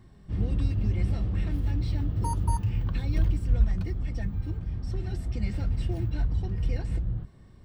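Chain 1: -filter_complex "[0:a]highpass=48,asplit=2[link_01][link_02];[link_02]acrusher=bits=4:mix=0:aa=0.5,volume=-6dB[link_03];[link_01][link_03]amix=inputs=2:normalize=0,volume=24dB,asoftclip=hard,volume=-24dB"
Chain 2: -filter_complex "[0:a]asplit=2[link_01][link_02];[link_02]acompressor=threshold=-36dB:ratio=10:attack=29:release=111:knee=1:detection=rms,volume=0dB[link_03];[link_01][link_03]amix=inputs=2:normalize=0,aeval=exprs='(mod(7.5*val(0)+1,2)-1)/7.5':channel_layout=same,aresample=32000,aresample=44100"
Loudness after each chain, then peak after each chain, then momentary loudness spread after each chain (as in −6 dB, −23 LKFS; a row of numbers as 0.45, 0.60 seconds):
−30.5, −27.0 LKFS; −24.0, −13.5 dBFS; 4, 5 LU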